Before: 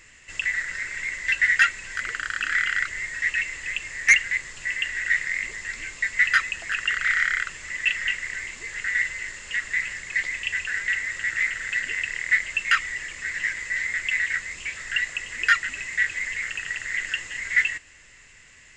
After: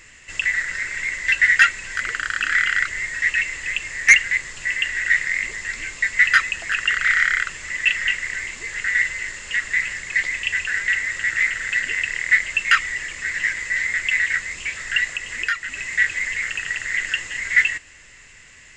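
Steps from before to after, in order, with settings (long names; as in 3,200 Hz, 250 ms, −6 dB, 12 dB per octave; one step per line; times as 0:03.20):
0:15.13–0:15.90: downward compressor 2.5 to 1, threshold −28 dBFS, peak gain reduction 10 dB
level +4.5 dB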